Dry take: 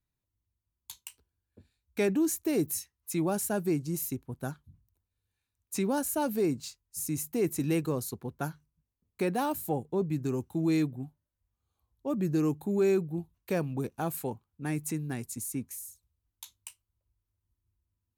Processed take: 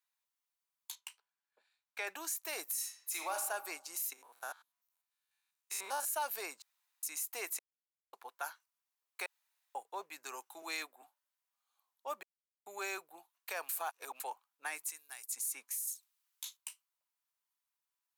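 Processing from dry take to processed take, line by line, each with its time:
0.95–2.07 s: low-pass 2.8 kHz 6 dB/octave
2.63–3.38 s: reverb throw, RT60 0.92 s, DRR 2.5 dB
4.13–6.05 s: spectrogram pixelated in time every 100 ms
6.62–7.03 s: room tone
7.59–8.13 s: mute
9.26–9.75 s: room tone
10.62–11.02 s: high-pass 210 Hz 24 dB/octave
12.23–12.66 s: mute
13.69–14.20 s: reverse
14.89–15.32 s: pre-emphasis filter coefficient 0.8
15.87–16.57 s: tilt shelf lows -8 dB, about 740 Hz
whole clip: high-pass 800 Hz 24 dB/octave; peak limiter -31 dBFS; trim +3.5 dB

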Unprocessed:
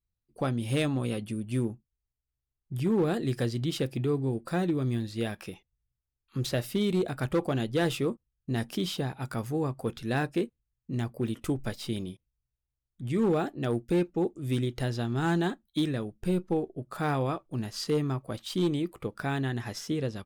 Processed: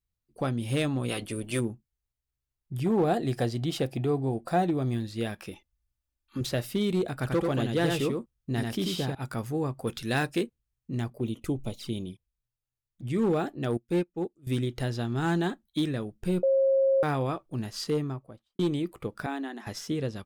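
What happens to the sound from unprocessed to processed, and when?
1.08–1.59 s: spectral peaks clipped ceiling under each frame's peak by 17 dB
2.84–4.94 s: peaking EQ 720 Hz +11.5 dB 0.48 oct
5.51–6.41 s: comb 3.4 ms
7.16–9.15 s: delay 90 ms -3.5 dB
9.87–10.43 s: treble shelf 2 kHz +8.5 dB
11.10–13.08 s: touch-sensitive flanger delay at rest 9.6 ms, full sweep at -31 dBFS
13.77–14.47 s: upward expansion 2.5:1, over -36 dBFS
16.43–17.03 s: bleep 539 Hz -19.5 dBFS
17.81–18.59 s: studio fade out
19.26–19.67 s: rippled Chebyshev high-pass 200 Hz, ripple 6 dB

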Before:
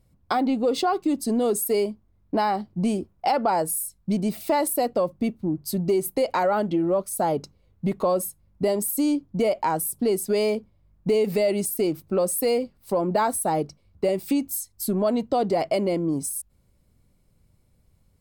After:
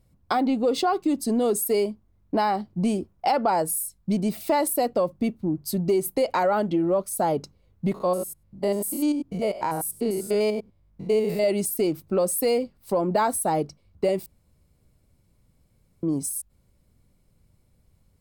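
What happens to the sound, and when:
7.94–11.44 s: spectrogram pixelated in time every 100 ms
14.26–16.03 s: room tone

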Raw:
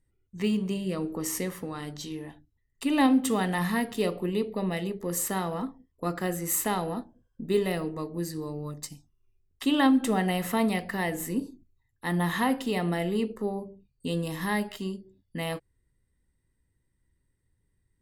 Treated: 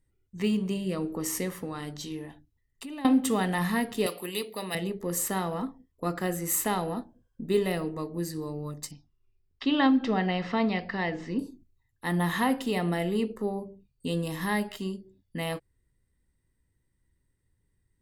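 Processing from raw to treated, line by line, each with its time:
2.25–3.05 s: compression 5:1, threshold -38 dBFS
4.06–4.75 s: tilt EQ +4.5 dB/octave
8.91–11.39 s: elliptic low-pass 5.2 kHz, stop band 80 dB

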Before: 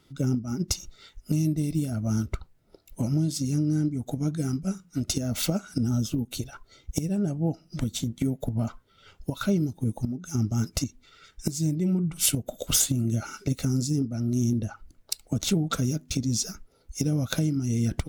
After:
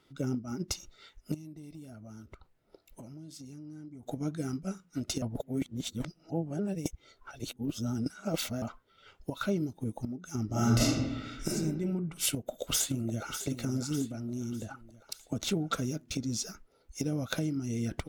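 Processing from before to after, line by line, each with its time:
1.34–4.03 s: compression 4:1, threshold -39 dBFS
5.22–8.62 s: reverse
10.46–11.47 s: reverb throw, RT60 1.2 s, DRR -10 dB
12.30–13.37 s: echo throw 600 ms, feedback 50%, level -10 dB
14.11–15.24 s: compression 2.5:1, threshold -27 dBFS
whole clip: tone controls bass -8 dB, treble -6 dB; trim -2 dB

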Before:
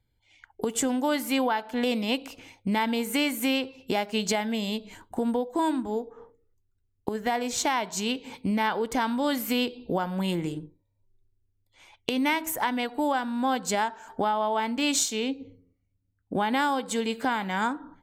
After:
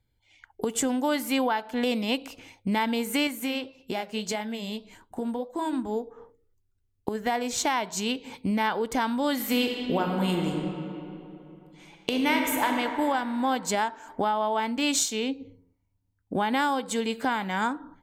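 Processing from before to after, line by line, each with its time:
3.27–5.73 s: flange 1.7 Hz, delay 4.2 ms, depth 5.9 ms, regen -70%
9.32–12.69 s: reverb throw, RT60 3 s, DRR 1.5 dB

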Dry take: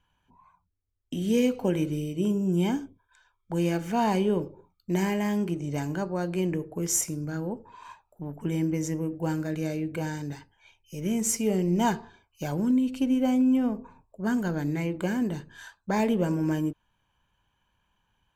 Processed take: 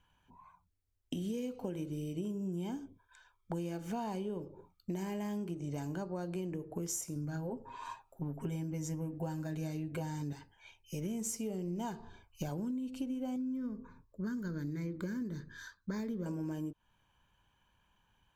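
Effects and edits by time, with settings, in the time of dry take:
7.15–10.33 s: comb 7.5 ms, depth 76%
11.99–12.49 s: bass shelf 92 Hz +12 dB
13.36–16.26 s: static phaser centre 2.8 kHz, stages 6
whole clip: dynamic bell 2 kHz, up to -6 dB, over -52 dBFS, Q 1.6; compression 12:1, threshold -35 dBFS

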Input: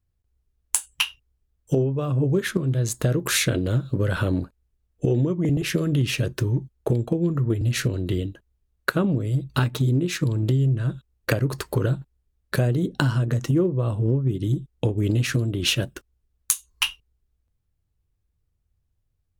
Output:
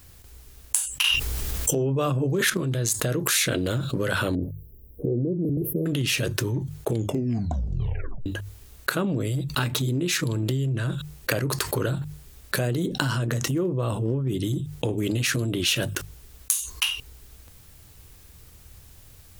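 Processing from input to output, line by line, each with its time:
1.04–2.50 s: level flattener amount 100%
4.35–5.86 s: inverse Chebyshev band-stop 1.2–7.7 kHz, stop band 50 dB
6.90 s: tape stop 1.36 s
whole clip: tilt EQ +2 dB/octave; hum notches 50/100/150 Hz; level flattener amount 70%; trim -9 dB

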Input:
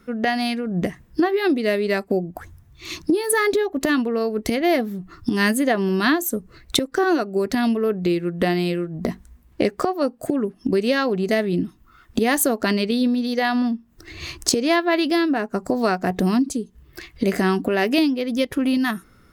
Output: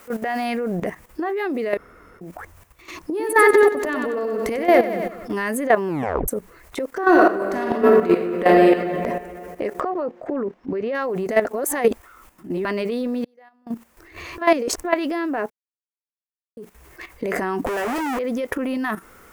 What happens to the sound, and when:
0.45 s: noise floor step -45 dB -55 dB
1.77–2.21 s: room tone
3.10–5.33 s: feedback delay 94 ms, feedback 60%, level -6.5 dB
5.88 s: tape stop 0.40 s
7.05–8.66 s: reverb throw, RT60 2.4 s, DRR -2 dB
9.80–10.95 s: distance through air 220 m
11.45–12.65 s: reverse
13.24–13.67 s: inverted gate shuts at -20 dBFS, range -38 dB
14.38–14.84 s: reverse
15.50–16.57 s: mute
17.66–18.19 s: Schmitt trigger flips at -30.5 dBFS
whole clip: graphic EQ 125/500/1000/2000/4000 Hz -6/+9/+8/+6/-7 dB; transient shaper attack -8 dB, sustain +3 dB; level held to a coarse grid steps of 12 dB

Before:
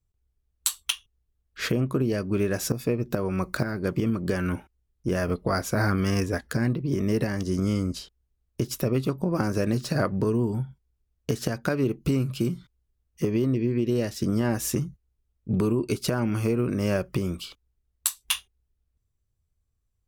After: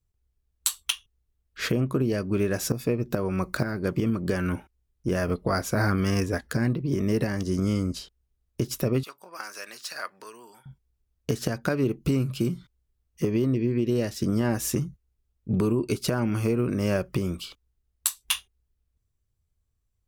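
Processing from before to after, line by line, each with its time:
9.03–10.66 s: high-pass 1.4 kHz

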